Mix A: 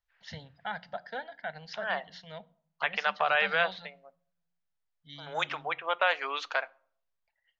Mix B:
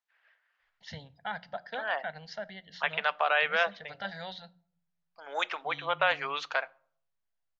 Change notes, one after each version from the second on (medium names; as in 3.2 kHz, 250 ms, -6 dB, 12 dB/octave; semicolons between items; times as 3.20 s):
first voice: entry +0.60 s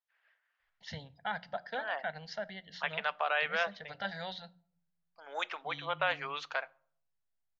second voice -5.0 dB